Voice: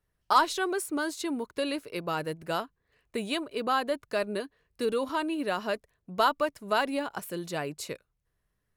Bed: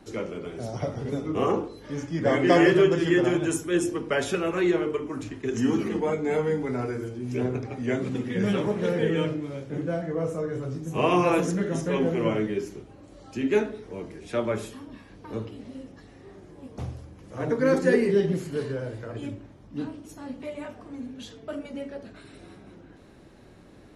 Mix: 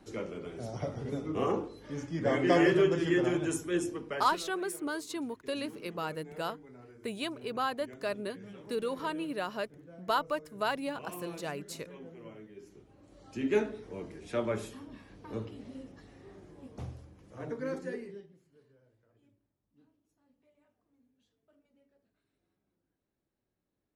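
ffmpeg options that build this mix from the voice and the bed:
-filter_complex "[0:a]adelay=3900,volume=0.562[s0];[1:a]volume=4.22,afade=t=out:st=3.69:d=0.82:silence=0.133352,afade=t=in:st=12.54:d=0.99:silence=0.11885,afade=t=out:st=16.41:d=1.88:silence=0.0334965[s1];[s0][s1]amix=inputs=2:normalize=0"

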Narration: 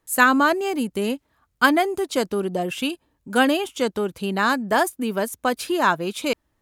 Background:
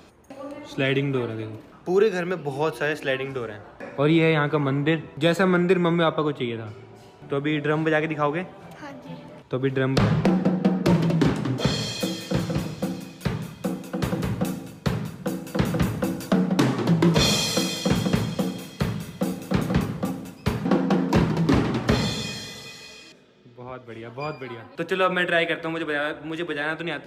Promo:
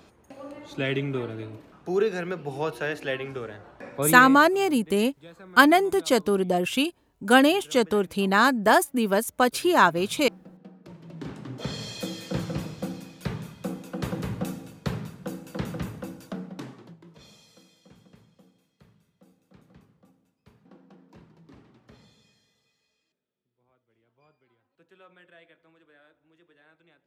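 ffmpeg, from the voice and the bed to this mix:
-filter_complex "[0:a]adelay=3950,volume=1.12[s0];[1:a]volume=7.5,afade=t=out:st=4:d=0.39:silence=0.0749894,afade=t=in:st=11.01:d=1.24:silence=0.0794328,afade=t=out:st=14.88:d=2.1:silence=0.0421697[s1];[s0][s1]amix=inputs=2:normalize=0"

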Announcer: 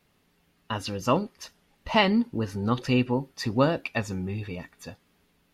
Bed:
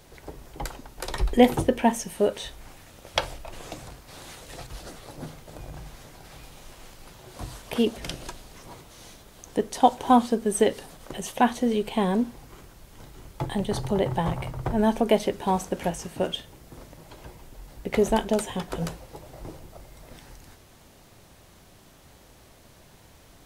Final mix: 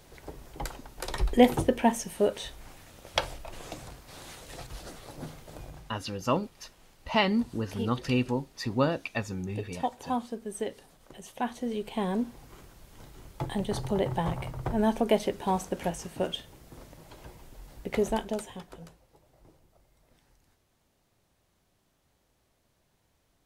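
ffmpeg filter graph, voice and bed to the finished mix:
-filter_complex "[0:a]adelay=5200,volume=0.668[s0];[1:a]volume=2.11,afade=t=out:st=5.58:d=0.33:silence=0.316228,afade=t=in:st=11.28:d=1.27:silence=0.354813,afade=t=out:st=17.78:d=1.07:silence=0.177828[s1];[s0][s1]amix=inputs=2:normalize=0"

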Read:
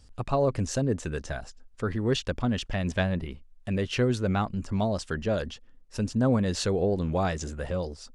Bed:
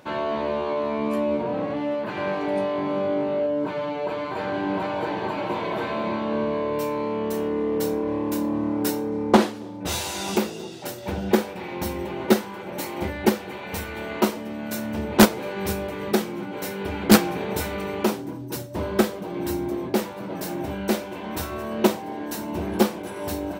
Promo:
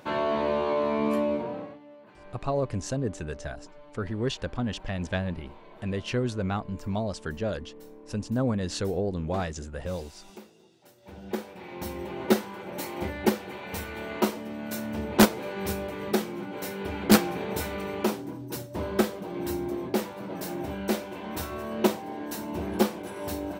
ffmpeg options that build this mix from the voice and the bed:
-filter_complex "[0:a]adelay=2150,volume=0.708[s0];[1:a]volume=8.91,afade=t=out:st=1.09:d=0.7:silence=0.0707946,afade=t=in:st=10.95:d=1.35:silence=0.105925[s1];[s0][s1]amix=inputs=2:normalize=0"

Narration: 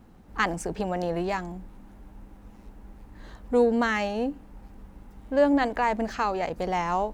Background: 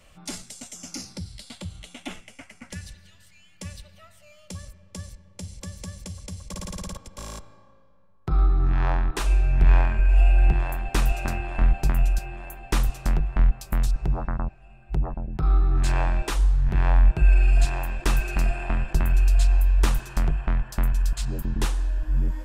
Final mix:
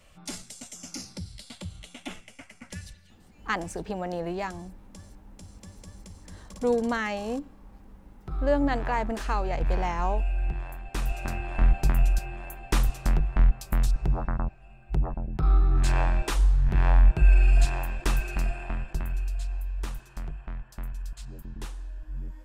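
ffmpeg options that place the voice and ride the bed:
-filter_complex "[0:a]adelay=3100,volume=0.668[s0];[1:a]volume=2.24,afade=t=out:st=2.82:d=0.43:silence=0.398107,afade=t=in:st=10.85:d=0.84:silence=0.334965,afade=t=out:st=17.53:d=1.86:silence=0.251189[s1];[s0][s1]amix=inputs=2:normalize=0"

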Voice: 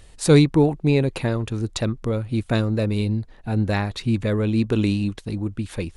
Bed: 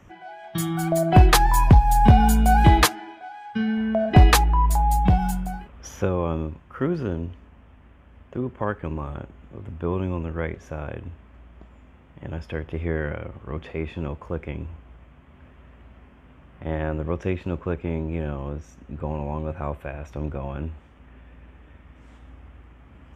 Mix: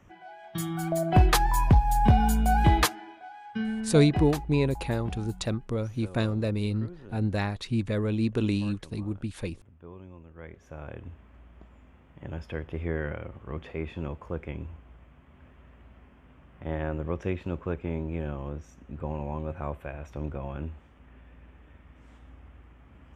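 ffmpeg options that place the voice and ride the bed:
-filter_complex "[0:a]adelay=3650,volume=0.501[s0];[1:a]volume=2.99,afade=t=out:st=3.64:d=0.65:silence=0.199526,afade=t=in:st=10.34:d=0.86:silence=0.16788[s1];[s0][s1]amix=inputs=2:normalize=0"

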